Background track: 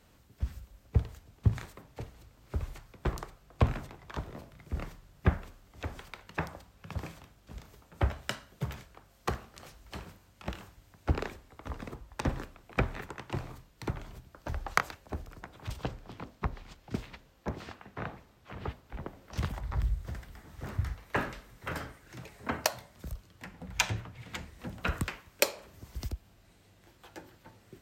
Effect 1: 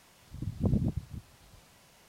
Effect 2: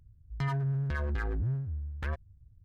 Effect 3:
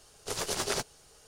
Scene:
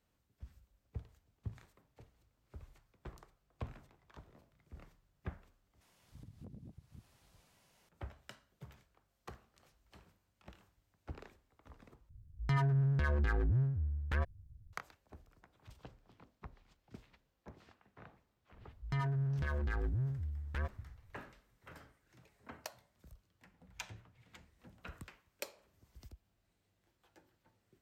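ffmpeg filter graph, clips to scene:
-filter_complex "[2:a]asplit=2[s0][s1];[0:a]volume=0.126[s2];[1:a]acompressor=threshold=0.0178:ratio=10:attack=0.26:release=274:knee=1:detection=rms[s3];[s2]asplit=3[s4][s5][s6];[s4]atrim=end=5.814[s7];[s3]atrim=end=2.08,asetpts=PTS-STARTPTS,volume=0.299[s8];[s5]atrim=start=7.886:end=12.094[s9];[s0]atrim=end=2.64[s10];[s6]atrim=start=14.726[s11];[s1]atrim=end=2.64,asetpts=PTS-STARTPTS,volume=0.631,afade=t=in:d=0.004:c=hsin,afade=t=out:st=2.636:d=0.004:c=hsin,adelay=18520[s12];[s7][s8]acrossfade=d=0.004:c1=hsin:c2=hsin[s13];[s13][s9]acrossfade=d=0.004:c1=hsin:c2=hsin[s14];[s14][s10]acrossfade=d=0.004:c1=hsin:c2=hsin[s15];[s15][s11]acrossfade=d=0.004:c1=hsin:c2=hsin[s16];[s16][s12]amix=inputs=2:normalize=0"

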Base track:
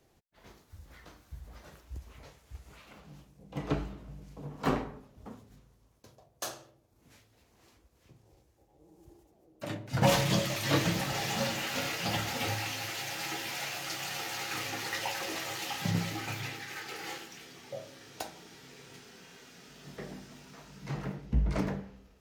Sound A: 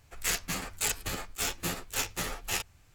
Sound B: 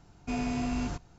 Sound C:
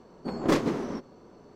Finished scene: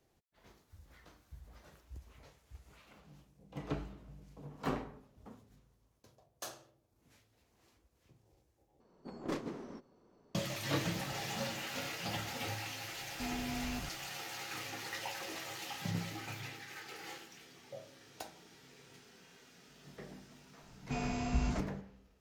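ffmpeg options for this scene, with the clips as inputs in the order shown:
-filter_complex "[2:a]asplit=2[s0][s1];[0:a]volume=0.447[s2];[s1]bandreject=f=50:t=h:w=6,bandreject=f=100:t=h:w=6,bandreject=f=150:t=h:w=6,bandreject=f=200:t=h:w=6,bandreject=f=250:t=h:w=6,bandreject=f=300:t=h:w=6,bandreject=f=350:t=h:w=6,bandreject=f=400:t=h:w=6,bandreject=f=450:t=h:w=6[s3];[s2]asplit=2[s4][s5];[s4]atrim=end=8.804[s6];[3:a]atrim=end=1.55,asetpts=PTS-STARTPTS,volume=0.188[s7];[s5]atrim=start=10.346[s8];[s0]atrim=end=1.18,asetpts=PTS-STARTPTS,volume=0.355,afade=t=in:d=0.004:c=hsin,afade=t=out:st=1.176:d=0.004:c=hsin,adelay=12920[s9];[s3]atrim=end=1.18,asetpts=PTS-STARTPTS,volume=0.708,afade=t=in:d=0.004:c=hsin,afade=t=out:st=1.176:d=0.004:c=hsin,adelay=20630[s10];[s6][s7]acrossfade=d=0.004:c1=hsin:c2=hsin[s11];[s11][s8]acrossfade=d=0.004:c1=hsin:c2=hsin[s12];[s12][s9][s10]amix=inputs=3:normalize=0"

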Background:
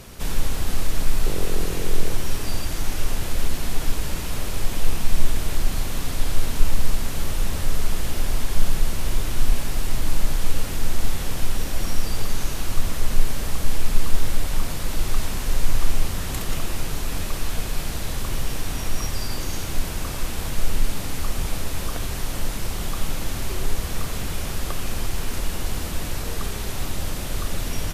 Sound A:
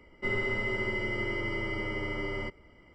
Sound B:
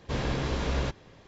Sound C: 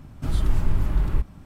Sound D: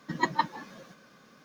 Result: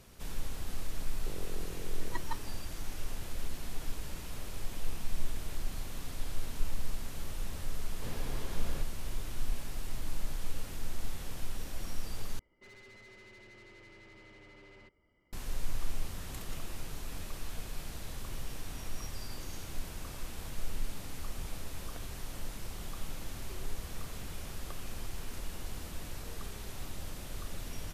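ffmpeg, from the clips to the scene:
-filter_complex "[0:a]volume=0.188[s0];[1:a]asoftclip=type=tanh:threshold=0.0141[s1];[s0]asplit=2[s2][s3];[s2]atrim=end=12.394[s4];[s1]atrim=end=2.94,asetpts=PTS-STARTPTS,volume=0.168[s5];[s3]atrim=start=15.326[s6];[4:a]atrim=end=1.44,asetpts=PTS-STARTPTS,volume=0.178,afade=t=in:d=0.004:c=hsin,afade=t=out:st=1.436:d=0.004:c=hsin,adelay=1920[s7];[2:a]atrim=end=1.27,asetpts=PTS-STARTPTS,volume=0.2,afade=t=in:d=0.004:c=hsin,afade=t=out:st=1.266:d=0.004:c=hsin,adelay=7920[s8];[s4][s5]acrossfade=d=0.004:c1=hsin:c2=hsin[s9];[s9][s6]acrossfade=d=0.004:c1=hsin:c2=hsin[s10];[s10][s7][s8]amix=inputs=3:normalize=0"

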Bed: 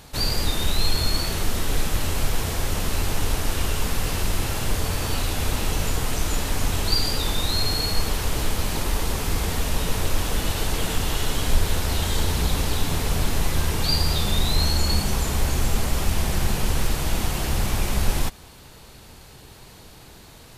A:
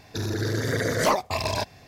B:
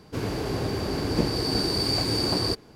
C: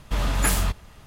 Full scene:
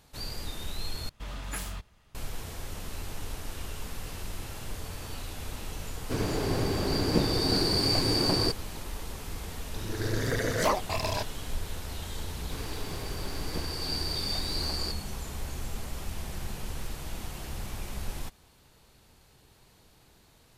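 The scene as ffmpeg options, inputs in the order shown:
-filter_complex "[2:a]asplit=2[s0][s1];[0:a]volume=0.2[s2];[3:a]equalizer=f=3400:w=0.58:g=3[s3];[1:a]dynaudnorm=f=110:g=7:m=3.76[s4];[s1]tiltshelf=f=670:g=-5[s5];[s2]asplit=2[s6][s7];[s6]atrim=end=1.094[s8];[s3]atrim=end=1.06,asetpts=PTS-STARTPTS,volume=0.178[s9];[s7]atrim=start=2.146[s10];[s0]atrim=end=2.75,asetpts=PTS-STARTPTS,volume=0.891,afade=t=in:d=0.004:c=hsin,afade=t=out:st=2.746:d=0.004:c=hsin,adelay=5970[s11];[s4]atrim=end=1.87,asetpts=PTS-STARTPTS,volume=0.2,afade=t=in:d=0.004:c=hsin,afade=t=out:st=1.866:d=0.004:c=hsin,adelay=9590[s12];[s5]atrim=end=2.75,asetpts=PTS-STARTPTS,volume=0.266,afade=t=in:d=0.004:c=hsin,afade=t=out:st=2.746:d=0.004:c=hsin,adelay=12370[s13];[s8][s9]acrossfade=d=0.004:c1=hsin:c2=hsin[s14];[s14][s10]acrossfade=d=0.004:c1=hsin:c2=hsin[s15];[s15][s11][s12][s13]amix=inputs=4:normalize=0"

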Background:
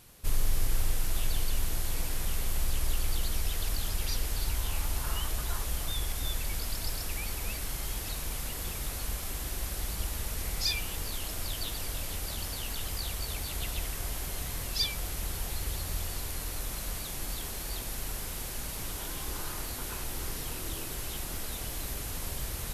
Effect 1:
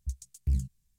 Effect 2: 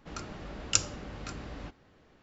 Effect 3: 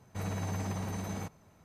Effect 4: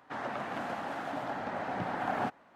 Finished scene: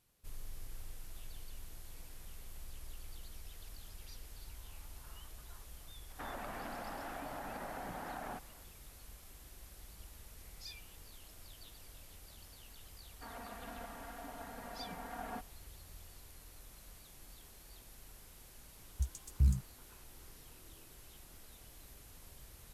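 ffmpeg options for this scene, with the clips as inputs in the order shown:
-filter_complex "[4:a]asplit=2[s0][s1];[0:a]volume=0.106[s2];[s0]acompressor=threshold=0.0141:ratio=6:attack=3.2:release=140:knee=1:detection=peak[s3];[s1]aecho=1:1:4.3:0.83[s4];[s3]atrim=end=2.55,asetpts=PTS-STARTPTS,volume=0.668,afade=t=in:d=0.004:c=hsin,afade=t=out:st=2.546:d=0.004:c=hsin,adelay=6090[s5];[s4]atrim=end=2.55,asetpts=PTS-STARTPTS,volume=0.188,afade=t=in:d=0.004:c=hsin,afade=t=out:st=2.546:d=0.004:c=hsin,adelay=13110[s6];[1:a]atrim=end=0.98,asetpts=PTS-STARTPTS,volume=0.891,afade=t=in:d=0.004:c=hsin,afade=t=out:st=0.976:d=0.004:c=hsin,adelay=18930[s7];[s2][s5][s6][s7]amix=inputs=4:normalize=0"

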